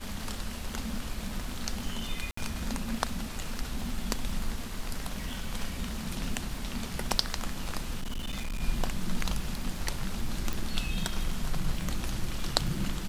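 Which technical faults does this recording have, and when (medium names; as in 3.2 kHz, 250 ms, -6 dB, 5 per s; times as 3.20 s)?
crackle 100 per s -37 dBFS
2.31–2.37 s: dropout 64 ms
8.00–8.61 s: clipped -30 dBFS
10.53 s: pop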